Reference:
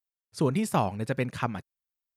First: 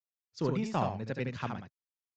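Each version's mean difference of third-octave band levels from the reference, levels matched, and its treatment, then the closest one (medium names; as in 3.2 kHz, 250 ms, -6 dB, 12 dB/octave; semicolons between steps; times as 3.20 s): 5.5 dB: steep low-pass 6.9 kHz 72 dB/octave; saturation -16.5 dBFS, distortion -20 dB; on a send: delay 72 ms -5 dB; on the sum: three bands expanded up and down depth 40%; trim -5.5 dB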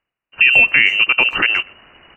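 16.0 dB: frequency inversion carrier 2.9 kHz; reverse; upward compressor, threshold -34 dBFS; reverse; speakerphone echo 120 ms, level -24 dB; loudness maximiser +18.5 dB; trim -1 dB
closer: first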